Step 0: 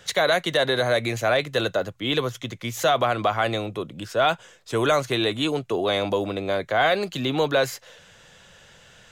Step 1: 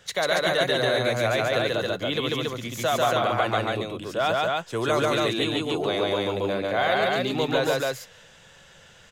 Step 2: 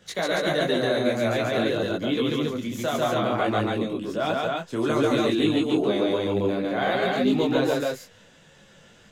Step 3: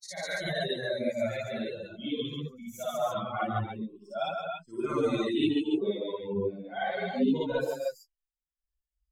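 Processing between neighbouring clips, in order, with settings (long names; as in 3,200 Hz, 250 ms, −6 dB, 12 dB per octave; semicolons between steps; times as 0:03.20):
loudspeakers that aren't time-aligned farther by 49 metres −1 dB, 96 metres −2 dB; level −4.5 dB
parametric band 250 Hz +11.5 dB 1.4 octaves; micro pitch shift up and down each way 19 cents
spectral dynamics exaggerated over time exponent 3; backwards echo 55 ms −5 dB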